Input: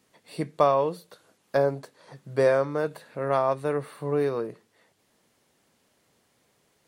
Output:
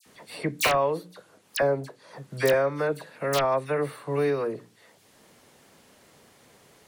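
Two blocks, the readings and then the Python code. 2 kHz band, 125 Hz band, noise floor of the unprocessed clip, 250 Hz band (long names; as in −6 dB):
+6.0 dB, 0.0 dB, −69 dBFS, 0.0 dB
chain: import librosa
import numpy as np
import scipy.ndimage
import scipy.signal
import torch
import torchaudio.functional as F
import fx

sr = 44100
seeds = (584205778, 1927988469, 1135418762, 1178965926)

y = fx.hum_notches(x, sr, base_hz=60, count=6)
y = fx.dynamic_eq(y, sr, hz=2100.0, q=1.7, threshold_db=-46.0, ratio=4.0, max_db=6)
y = fx.wow_flutter(y, sr, seeds[0], rate_hz=2.1, depth_cents=27.0)
y = (np.mod(10.0 ** (11.5 / 20.0) * y + 1.0, 2.0) - 1.0) / 10.0 ** (11.5 / 20.0)
y = fx.dispersion(y, sr, late='lows', ms=59.0, hz=2100.0)
y = fx.band_squash(y, sr, depth_pct=40)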